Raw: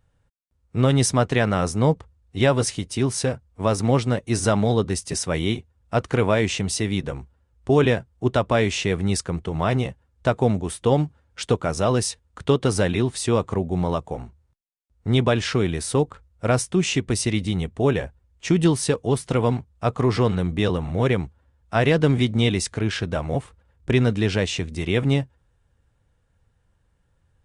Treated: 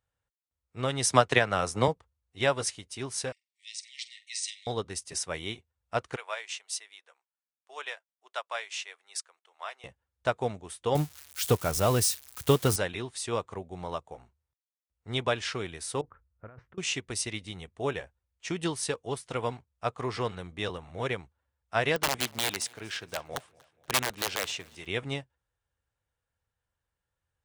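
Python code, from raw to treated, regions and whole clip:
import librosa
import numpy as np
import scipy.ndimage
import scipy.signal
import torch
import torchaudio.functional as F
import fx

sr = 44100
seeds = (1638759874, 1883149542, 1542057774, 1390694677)

y = fx.chain(x, sr, fx.transient(attack_db=9, sustain_db=2),
    fx.band_squash(depth_pct=40), at=(1.1, 1.88))
y = fx.chain(y, sr, fx.brickwall_bandpass(low_hz=1800.0, high_hz=9400.0),
    fx.peak_eq(hz=4100.0, db=6.5, octaves=0.66),
    fx.room_flutter(wall_m=7.9, rt60_s=0.24), at=(3.32, 4.67))
y = fx.chain(y, sr, fx.bessel_highpass(hz=910.0, order=4),
    fx.upward_expand(threshold_db=-47.0, expansion=1.5), at=(6.16, 9.84))
y = fx.chain(y, sr, fx.crossing_spikes(level_db=-21.0),
    fx.low_shelf(hz=280.0, db=11.5), at=(10.95, 12.76))
y = fx.chain(y, sr, fx.lowpass(hz=1600.0, slope=24),
    fx.peak_eq(hz=740.0, db=-9.0, octaves=1.7),
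    fx.over_compress(threshold_db=-27.0, ratio=-0.5), at=(16.01, 16.78))
y = fx.chain(y, sr, fx.highpass(hz=160.0, slope=6),
    fx.overflow_wrap(gain_db=14.0),
    fx.echo_feedback(ms=238, feedback_pct=52, wet_db=-20.0), at=(21.96, 24.86))
y = fx.highpass(y, sr, hz=130.0, slope=6)
y = fx.peak_eq(y, sr, hz=210.0, db=-10.5, octaves=2.3)
y = fx.upward_expand(y, sr, threshold_db=-38.0, expansion=1.5)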